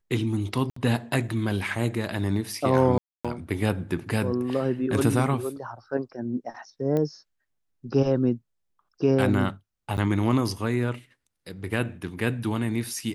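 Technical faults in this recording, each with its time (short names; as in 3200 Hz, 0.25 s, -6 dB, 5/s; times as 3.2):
0.7–0.76 gap 64 ms
2.98–3.25 gap 0.266 s
6.97 pop -16 dBFS
9.97–9.98 gap 9.2 ms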